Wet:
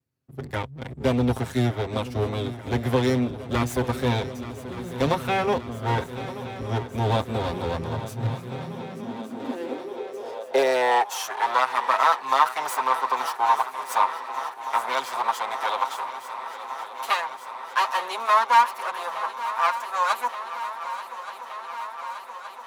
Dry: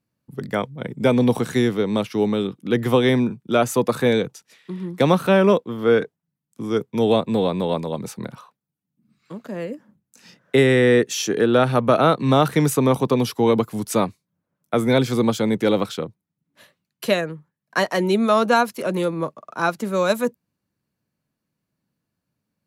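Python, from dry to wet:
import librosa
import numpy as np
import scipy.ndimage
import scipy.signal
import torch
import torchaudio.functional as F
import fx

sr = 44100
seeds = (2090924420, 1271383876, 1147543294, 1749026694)

y = fx.lower_of_two(x, sr, delay_ms=7.6)
y = fx.echo_swing(y, sr, ms=1172, ratio=3, feedback_pct=76, wet_db=-14.5)
y = fx.filter_sweep_highpass(y, sr, from_hz=70.0, to_hz=990.0, start_s=7.62, end_s=11.32, q=4.4)
y = F.gain(torch.from_numpy(y), -5.0).numpy()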